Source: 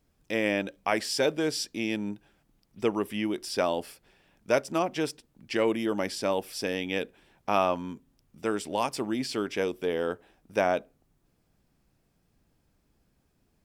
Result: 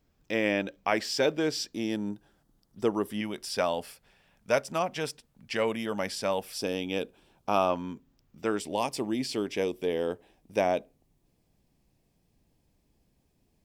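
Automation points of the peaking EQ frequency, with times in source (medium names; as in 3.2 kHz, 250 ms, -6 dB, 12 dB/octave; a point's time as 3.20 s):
peaking EQ -10.5 dB 0.5 oct
10 kHz
from 1.73 s 2.4 kHz
from 3.21 s 330 Hz
from 6.58 s 1.9 kHz
from 7.70 s 9.9 kHz
from 8.60 s 1.4 kHz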